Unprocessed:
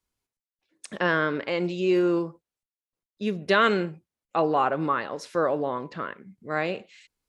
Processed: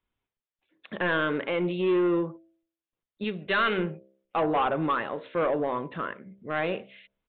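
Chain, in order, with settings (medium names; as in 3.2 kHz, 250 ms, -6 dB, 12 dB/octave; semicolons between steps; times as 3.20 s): de-hum 65.99 Hz, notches 10; 3.24–3.78 s: tilt shelf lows -5.5 dB, about 1.5 kHz; saturation -20.5 dBFS, distortion -12 dB; resampled via 8 kHz; trim +1.5 dB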